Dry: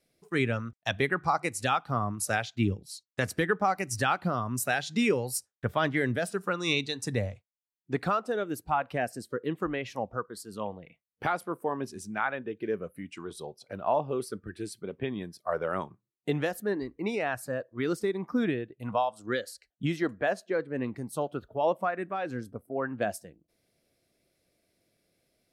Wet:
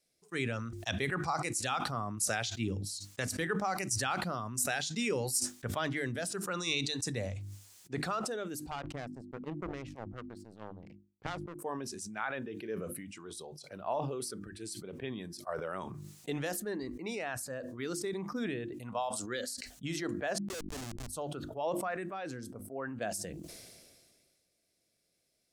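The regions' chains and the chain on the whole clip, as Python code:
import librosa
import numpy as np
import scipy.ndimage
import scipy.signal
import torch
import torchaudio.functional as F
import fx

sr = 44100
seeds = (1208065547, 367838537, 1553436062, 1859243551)

y = fx.chain(x, sr, fx.riaa(side='playback'),
    fx.power_curve(exponent=2.0), at=(8.71, 11.59))
y = fx.chain(y, sr, fx.high_shelf(hz=2000.0, db=-3.0),
    fx.schmitt(flips_db=-33.5), at=(20.38, 21.08))
y = fx.peak_eq(y, sr, hz=7100.0, db=11.0, octaves=1.7)
y = fx.hum_notches(y, sr, base_hz=50, count=7)
y = fx.sustainer(y, sr, db_per_s=31.0)
y = y * 10.0 ** (-8.5 / 20.0)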